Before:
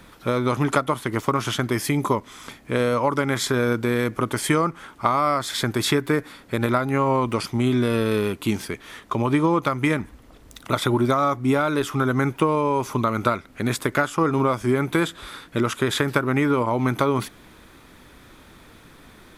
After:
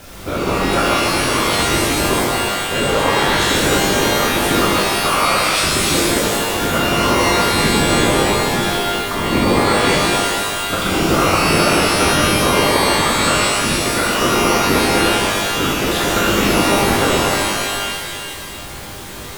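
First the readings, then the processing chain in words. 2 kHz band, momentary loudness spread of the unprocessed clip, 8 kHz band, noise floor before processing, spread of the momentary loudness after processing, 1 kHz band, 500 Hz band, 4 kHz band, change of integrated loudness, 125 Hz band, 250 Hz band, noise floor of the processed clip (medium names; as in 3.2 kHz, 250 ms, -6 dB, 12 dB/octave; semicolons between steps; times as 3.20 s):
+11.0 dB, 6 LU, +15.5 dB, -49 dBFS, 5 LU, +8.0 dB, +6.0 dB, +15.0 dB, +7.5 dB, +3.0 dB, +4.0 dB, -30 dBFS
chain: added noise pink -38 dBFS; whisper effect; pitch-shifted reverb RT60 2 s, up +12 st, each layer -2 dB, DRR -5.5 dB; trim -3 dB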